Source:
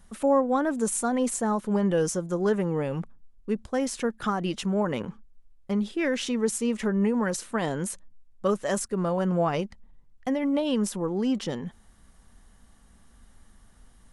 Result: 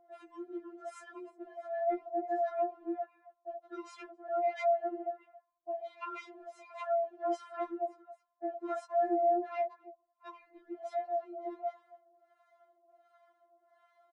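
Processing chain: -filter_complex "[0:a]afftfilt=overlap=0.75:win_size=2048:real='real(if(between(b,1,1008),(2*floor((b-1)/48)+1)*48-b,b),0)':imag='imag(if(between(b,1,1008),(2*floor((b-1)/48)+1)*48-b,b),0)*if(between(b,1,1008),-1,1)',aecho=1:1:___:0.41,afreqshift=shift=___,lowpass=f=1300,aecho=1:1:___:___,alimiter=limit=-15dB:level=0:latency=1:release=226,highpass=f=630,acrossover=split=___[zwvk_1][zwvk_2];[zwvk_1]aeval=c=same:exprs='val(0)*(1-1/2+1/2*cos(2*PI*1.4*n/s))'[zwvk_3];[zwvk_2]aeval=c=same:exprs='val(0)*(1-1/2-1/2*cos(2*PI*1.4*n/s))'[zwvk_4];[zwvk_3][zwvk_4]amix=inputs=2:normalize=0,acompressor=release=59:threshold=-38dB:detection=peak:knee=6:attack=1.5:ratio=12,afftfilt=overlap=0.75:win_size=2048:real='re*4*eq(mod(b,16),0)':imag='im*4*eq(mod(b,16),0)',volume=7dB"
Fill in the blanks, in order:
4, -160, 274, 0.0944, 680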